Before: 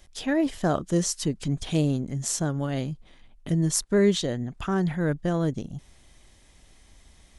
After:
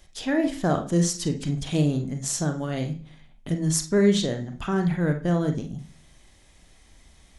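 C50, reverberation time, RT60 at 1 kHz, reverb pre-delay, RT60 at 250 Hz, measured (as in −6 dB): 10.5 dB, 0.45 s, 0.40 s, 34 ms, 0.60 s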